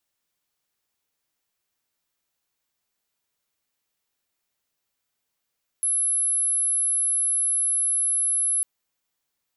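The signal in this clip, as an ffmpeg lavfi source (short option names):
-f lavfi -i "sine=f=11000:d=2.8:r=44100,volume=-1.94dB"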